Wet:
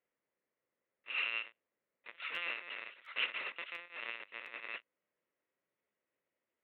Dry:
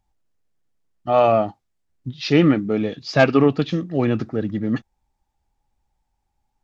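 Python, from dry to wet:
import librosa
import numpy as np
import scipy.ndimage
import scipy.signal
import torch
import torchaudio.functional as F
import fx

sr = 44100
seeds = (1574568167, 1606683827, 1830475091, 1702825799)

y = fx.bit_reversed(x, sr, seeds[0], block=128)
y = fx.lpc_vocoder(y, sr, seeds[1], excitation='pitch_kept', order=10)
y = np.diff(y, prepend=0.0)
y = fx.dmg_noise_colour(y, sr, seeds[2], colour='brown', level_db=-80.0)
y = fx.cabinet(y, sr, low_hz=420.0, low_slope=12, high_hz=2900.0, hz=(530.0, 780.0, 2000.0), db=(6, -6, 8))
y = fx.buffer_crackle(y, sr, first_s=0.94, period_s=0.7, block=512, kind='repeat')
y = y * librosa.db_to_amplitude(3.5)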